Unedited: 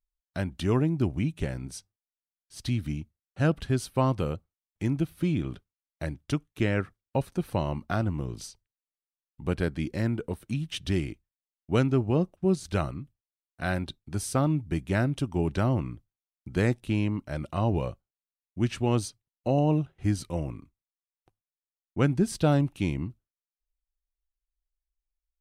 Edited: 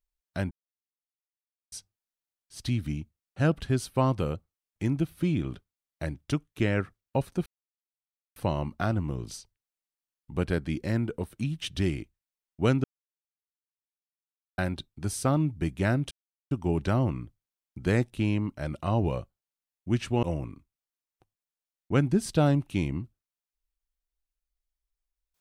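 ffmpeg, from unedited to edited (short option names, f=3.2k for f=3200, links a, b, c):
-filter_complex "[0:a]asplit=8[a][b][c][d][e][f][g][h];[a]atrim=end=0.51,asetpts=PTS-STARTPTS,afade=t=out:st=0.506:d=0.004:c=hsin[i];[b]atrim=start=0.51:end=1.72,asetpts=PTS-STARTPTS,volume=0[j];[c]atrim=start=1.72:end=7.46,asetpts=PTS-STARTPTS,afade=t=in:d=0.004:c=hsin,afade=t=out:st=5.736:d=0.004:c=hsin,apad=pad_dur=0.9[k];[d]atrim=start=7.46:end=11.94,asetpts=PTS-STARTPTS,afade=t=in:d=0.004:c=hsin,afade=t=out:st=4.476:d=0.004:c=hsin[l];[e]atrim=start=11.94:end=13.68,asetpts=PTS-STARTPTS,volume=0[m];[f]atrim=start=13.68:end=15.21,asetpts=PTS-STARTPTS,afade=t=in:d=0.004:c=hsin,afade=t=out:st=1.526:d=0.004:c=hsin,apad=pad_dur=0.4[n];[g]atrim=start=15.21:end=18.932,asetpts=PTS-STARTPTS,afade=t=in:d=0.004:c=hsin[o];[h]atrim=start=20.288[p];[i][j][k][l][m][n][o]concat=n=7:v=0:a=1[q];[q][p]acrossfade=d=0.004:c1=hsin:c2=hsin"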